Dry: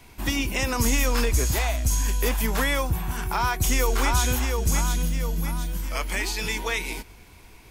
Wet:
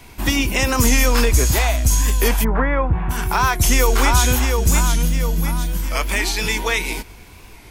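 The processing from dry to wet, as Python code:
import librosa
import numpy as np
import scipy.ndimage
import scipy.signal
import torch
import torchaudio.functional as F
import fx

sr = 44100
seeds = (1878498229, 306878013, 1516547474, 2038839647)

y = fx.lowpass(x, sr, hz=fx.line((2.43, 1400.0), (3.09, 2400.0)), slope=24, at=(2.43, 3.09), fade=0.02)
y = fx.record_warp(y, sr, rpm=45.0, depth_cents=100.0)
y = y * 10.0 ** (7.0 / 20.0)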